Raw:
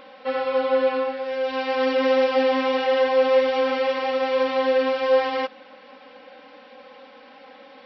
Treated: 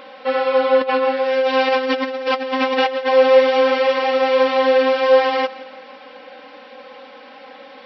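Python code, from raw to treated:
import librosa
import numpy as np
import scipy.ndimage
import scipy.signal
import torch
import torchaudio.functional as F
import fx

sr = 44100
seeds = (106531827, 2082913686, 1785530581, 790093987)

y = fx.over_compress(x, sr, threshold_db=-24.0, ratio=-0.5, at=(0.81, 3.13))
y = fx.low_shelf(y, sr, hz=140.0, db=-9.0)
y = fx.echo_feedback(y, sr, ms=169, feedback_pct=51, wet_db=-18.5)
y = y * librosa.db_to_amplitude(6.5)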